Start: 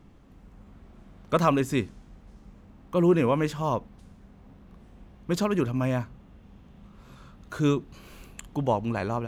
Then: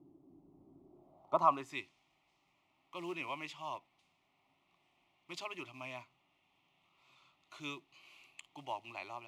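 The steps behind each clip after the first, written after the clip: short-mantissa float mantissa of 4-bit; band-pass sweep 340 Hz -> 2300 Hz, 0.87–1.81; fixed phaser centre 320 Hz, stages 8; gain +3 dB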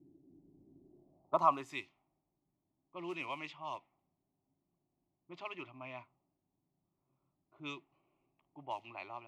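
low-pass opened by the level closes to 320 Hz, open at -36 dBFS

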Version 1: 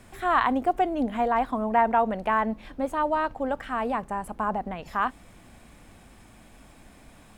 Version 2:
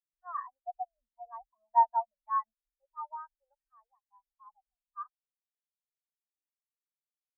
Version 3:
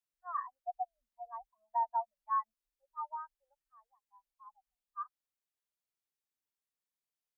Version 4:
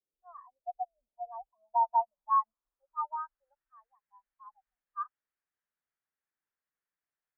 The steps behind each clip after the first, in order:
passive tone stack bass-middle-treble 10-0-10; spectral expander 4:1; gain +1.5 dB
limiter -24.5 dBFS, peak gain reduction 11 dB
low-pass sweep 450 Hz -> 1700 Hz, 0.15–3.77

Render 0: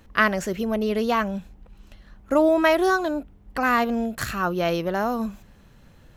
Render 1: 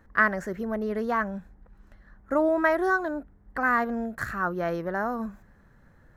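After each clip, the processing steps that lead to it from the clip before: resonant high shelf 2200 Hz -7.5 dB, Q 3; gain -5.5 dB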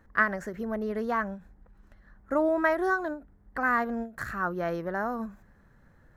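ending taper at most 180 dB/s; gain -2 dB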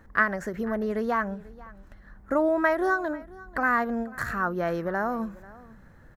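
in parallel at +0.5 dB: compressor, threshold -36 dBFS, peak gain reduction 17 dB; on the sum: echo 0.49 s -21 dB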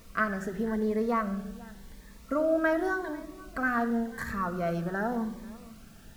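added noise pink -53 dBFS; shoebox room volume 3700 m³, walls furnished, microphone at 1.6 m; cascading phaser rising 0.89 Hz; gain -3 dB

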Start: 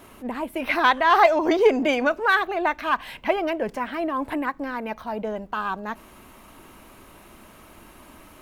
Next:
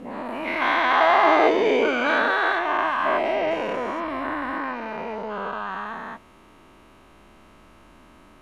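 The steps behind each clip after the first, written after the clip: spectral dilation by 0.48 s; air absorption 66 m; gain -9 dB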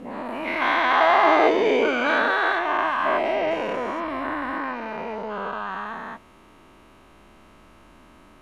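nothing audible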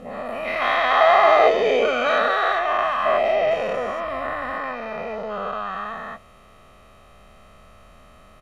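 comb 1.6 ms, depth 79%

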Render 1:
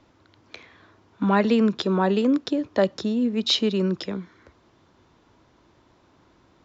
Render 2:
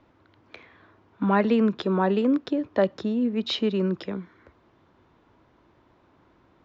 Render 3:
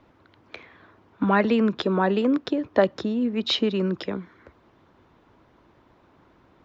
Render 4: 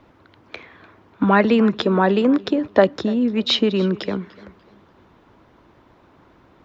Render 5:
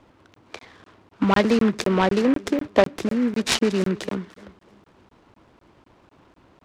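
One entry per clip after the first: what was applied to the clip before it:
tone controls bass -1 dB, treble -14 dB; gain -1 dB
harmonic-percussive split percussive +5 dB
warbling echo 0.295 s, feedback 31%, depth 69 cents, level -21 dB; gain +5 dB
crackling interface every 0.25 s, samples 1024, zero, from 0.34; noise-modulated delay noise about 1400 Hz, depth 0.057 ms; gain -2.5 dB

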